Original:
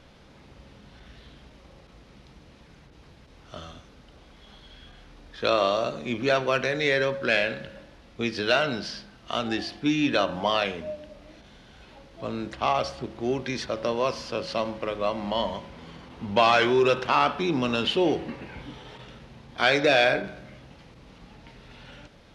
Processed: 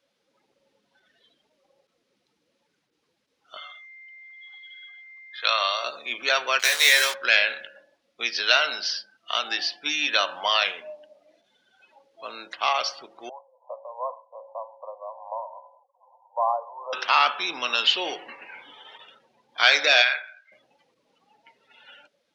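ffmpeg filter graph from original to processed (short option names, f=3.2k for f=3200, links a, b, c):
-filter_complex "[0:a]asettb=1/sr,asplit=3[a][b][c];[a]atrim=end=3.574[d];[b]atrim=start=3.57:end=5.84,asetpts=PTS-STARTPTS,afade=t=in:d=0.004:c=qsin,afade=t=out:st=2.266:d=0.004:c=qsin,aeval=exprs='val(0)+0.00355*sin(2*PI*2100*n/s)':c=same,highpass=690,lowpass=6k[e];[c]atrim=start=5.836[f];[d][e]acrossfade=d=0.004:c1=hsin:c2=qsin[g];[g][f]acrossfade=d=0.004:c1=qsin:c2=hsin,asettb=1/sr,asplit=3[h][i][j];[h]atrim=end=6.594[k];[i]atrim=start=6.59:end=7.14,asetpts=PTS-STARTPTS,afade=t=in:d=0.004:c=qsin,afade=t=out:st=0.546:d=0.004:c=qsin,aemphasis=mode=production:type=bsi,aeval=exprs='val(0)*gte(abs(val(0)),0.0355)':c=same,asplit=2[l][m];[m]adelay=18,volume=-5.5dB[n];[l][n]amix=inputs=2:normalize=0,atrim=end_sample=24255[o];[j]atrim=start=7.136[p];[k][o]acrossfade=d=0.004:c1=hsin:c2=qsin[q];[q][p]acrossfade=d=0.004:c1=qsin:c2=hsin,asettb=1/sr,asplit=3[r][s][t];[r]atrim=end=13.294[u];[s]atrim=start=13.29:end=16.93,asetpts=PTS-STARTPTS,afade=t=in:d=0.004:c=qsin,afade=t=out:st=3.636:d=0.004:c=qsin,tremolo=f=2.5:d=0.55,asuperpass=centerf=730:order=12:qfactor=1.3[v];[t]atrim=start=16.926[w];[u][v]acrossfade=d=0.004:c1=hsin:c2=qsin[x];[x][w]acrossfade=d=0.004:c1=qsin:c2=hsin,asettb=1/sr,asplit=3[y][z][aa];[y]atrim=end=20.024[ab];[z]atrim=start=20.02:end=20.52,asetpts=PTS-STARTPTS,afade=t=in:d=0.004:c=qsin,afade=t=out:st=0.496:d=0.004:c=qsin,highpass=1.2k,highshelf=f=5.8k:g=-11[ac];[aa]atrim=start=20.516[ad];[ab][ac]acrossfade=d=0.004:c1=hsin:c2=qsin[ae];[ae][ad]acrossfade=d=0.004:c1=qsin:c2=hsin,afftdn=nr=24:nf=-46,highpass=990,highshelf=f=4.8k:g=11,volume=4dB"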